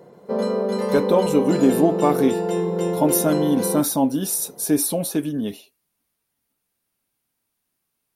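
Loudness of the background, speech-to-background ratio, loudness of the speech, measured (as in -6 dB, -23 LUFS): -24.0 LUFS, 3.0 dB, -21.0 LUFS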